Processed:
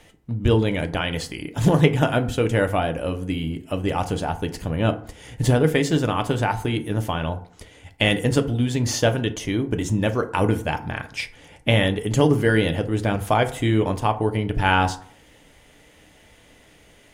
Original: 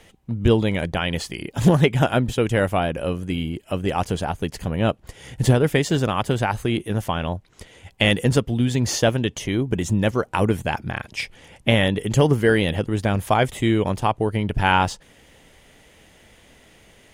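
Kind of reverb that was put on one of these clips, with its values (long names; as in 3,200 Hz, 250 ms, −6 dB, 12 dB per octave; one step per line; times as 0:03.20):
feedback delay network reverb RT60 0.52 s, low-frequency decay 1×, high-frequency decay 0.5×, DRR 7 dB
level −1.5 dB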